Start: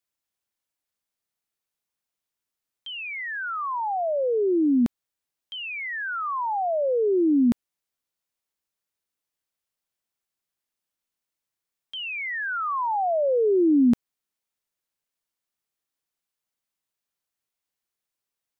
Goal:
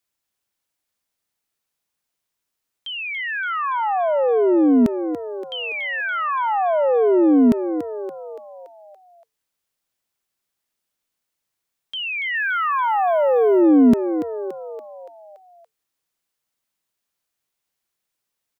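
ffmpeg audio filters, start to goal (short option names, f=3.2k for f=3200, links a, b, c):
-filter_complex "[0:a]asplit=3[a][b][c];[a]afade=t=out:st=12.33:d=0.02[d];[b]aemphasis=mode=production:type=75fm,afade=t=in:st=12.33:d=0.02,afade=t=out:st=13.61:d=0.02[e];[c]afade=t=in:st=13.61:d=0.02[f];[d][e][f]amix=inputs=3:normalize=0,asplit=7[g][h][i][j][k][l][m];[h]adelay=285,afreqshift=73,volume=-10.5dB[n];[i]adelay=570,afreqshift=146,volume=-16dB[o];[j]adelay=855,afreqshift=219,volume=-21.5dB[p];[k]adelay=1140,afreqshift=292,volume=-27dB[q];[l]adelay=1425,afreqshift=365,volume=-32.6dB[r];[m]adelay=1710,afreqshift=438,volume=-38.1dB[s];[g][n][o][p][q][r][s]amix=inputs=7:normalize=0,volume=5.5dB"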